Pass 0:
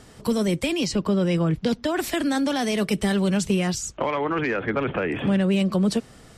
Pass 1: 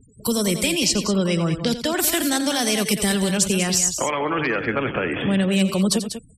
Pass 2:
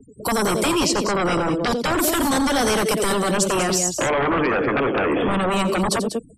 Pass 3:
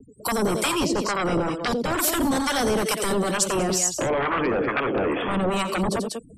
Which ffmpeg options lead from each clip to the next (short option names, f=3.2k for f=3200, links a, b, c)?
-af "crystalizer=i=3.5:c=0,afftfilt=real='re*gte(hypot(re,im),0.0178)':imag='im*gte(hypot(re,im),0.0178)':win_size=1024:overlap=0.75,aecho=1:1:87.46|192.4:0.251|0.316"
-filter_complex "[0:a]acrossover=split=260|800|2500[a][b][c][d];[a]acompressor=threshold=-32dB:ratio=6[e];[b]aeval=exprs='0.168*sin(PI/2*4.47*val(0)/0.168)':c=same[f];[e][f][c][d]amix=inputs=4:normalize=0,volume=-2.5dB"
-filter_complex "[0:a]areverse,acompressor=mode=upward:threshold=-42dB:ratio=2.5,areverse,acrossover=split=760[a][b];[a]aeval=exprs='val(0)*(1-0.7/2+0.7/2*cos(2*PI*2.2*n/s))':c=same[c];[b]aeval=exprs='val(0)*(1-0.7/2-0.7/2*cos(2*PI*2.2*n/s))':c=same[d];[c][d]amix=inputs=2:normalize=0"